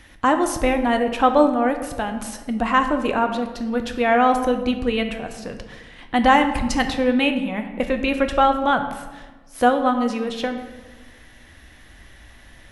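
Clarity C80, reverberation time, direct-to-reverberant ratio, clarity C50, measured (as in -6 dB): 10.5 dB, 1.3 s, 6.0 dB, 9.0 dB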